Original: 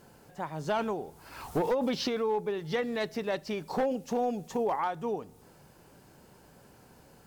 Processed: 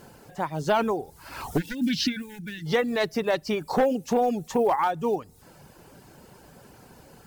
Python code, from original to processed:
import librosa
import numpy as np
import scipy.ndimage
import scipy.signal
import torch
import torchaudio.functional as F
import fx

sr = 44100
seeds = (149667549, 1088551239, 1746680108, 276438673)

y = fx.quant_float(x, sr, bits=4)
y = fx.spec_box(y, sr, start_s=1.57, length_s=1.09, low_hz=330.0, high_hz=1400.0, gain_db=-26)
y = fx.dereverb_blind(y, sr, rt60_s=0.55)
y = y * librosa.db_to_amplitude(7.5)